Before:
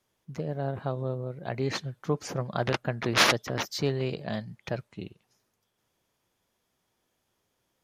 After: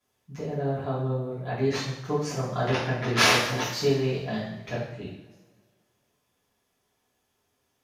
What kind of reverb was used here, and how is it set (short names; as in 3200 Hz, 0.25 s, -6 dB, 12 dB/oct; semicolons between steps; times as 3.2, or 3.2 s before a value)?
two-slope reverb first 0.68 s, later 2 s, from -18 dB, DRR -10 dB; gain -7.5 dB